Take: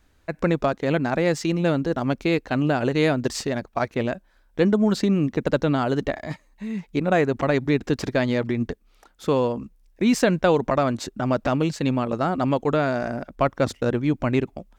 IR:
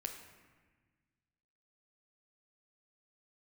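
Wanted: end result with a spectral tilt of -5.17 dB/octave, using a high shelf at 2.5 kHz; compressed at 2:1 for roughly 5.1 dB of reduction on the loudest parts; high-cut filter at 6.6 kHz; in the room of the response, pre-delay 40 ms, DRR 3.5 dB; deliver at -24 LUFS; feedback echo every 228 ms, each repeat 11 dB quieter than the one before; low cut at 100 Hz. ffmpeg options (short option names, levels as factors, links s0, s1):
-filter_complex "[0:a]highpass=100,lowpass=6600,highshelf=f=2500:g=-5,acompressor=threshold=0.0631:ratio=2,aecho=1:1:228|456|684:0.282|0.0789|0.0221,asplit=2[s0][s1];[1:a]atrim=start_sample=2205,adelay=40[s2];[s1][s2]afir=irnorm=-1:irlink=0,volume=0.794[s3];[s0][s3]amix=inputs=2:normalize=0,volume=1.19"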